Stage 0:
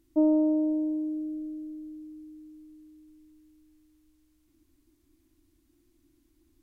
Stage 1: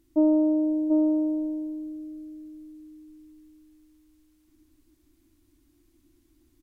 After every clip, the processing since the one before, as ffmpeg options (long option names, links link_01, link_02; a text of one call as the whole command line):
ffmpeg -i in.wav -af "aecho=1:1:739:0.596,volume=2dB" out.wav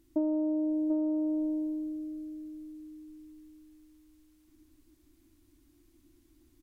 ffmpeg -i in.wav -af "acompressor=threshold=-27dB:ratio=6" out.wav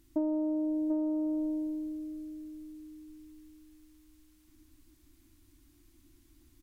ffmpeg -i in.wav -af "equalizer=frequency=430:width_type=o:width=1.4:gain=-8,volume=4dB" out.wav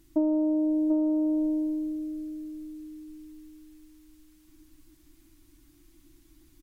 ffmpeg -i in.wav -af "aecho=1:1:6.2:0.44,volume=3dB" out.wav